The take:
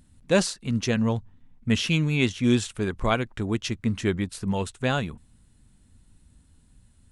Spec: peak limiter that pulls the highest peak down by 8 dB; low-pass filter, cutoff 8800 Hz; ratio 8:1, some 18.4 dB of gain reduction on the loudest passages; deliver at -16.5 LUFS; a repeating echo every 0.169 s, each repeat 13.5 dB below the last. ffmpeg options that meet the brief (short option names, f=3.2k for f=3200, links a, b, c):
-af "lowpass=8.8k,acompressor=threshold=-36dB:ratio=8,alimiter=level_in=9dB:limit=-24dB:level=0:latency=1,volume=-9dB,aecho=1:1:169|338:0.211|0.0444,volume=27dB"